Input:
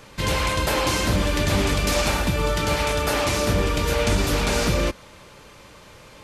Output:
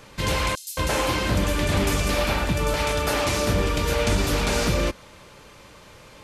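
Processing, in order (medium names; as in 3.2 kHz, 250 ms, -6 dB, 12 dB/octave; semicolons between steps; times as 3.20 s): 0.55–2.74 s: bands offset in time highs, lows 220 ms, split 5.2 kHz; trim -1 dB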